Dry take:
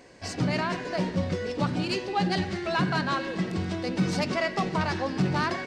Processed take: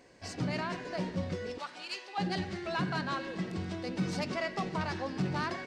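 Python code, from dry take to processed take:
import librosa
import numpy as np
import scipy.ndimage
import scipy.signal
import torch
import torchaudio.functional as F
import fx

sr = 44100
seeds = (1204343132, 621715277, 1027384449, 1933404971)

y = fx.highpass(x, sr, hz=880.0, slope=12, at=(1.58, 2.18))
y = y * librosa.db_to_amplitude(-7.0)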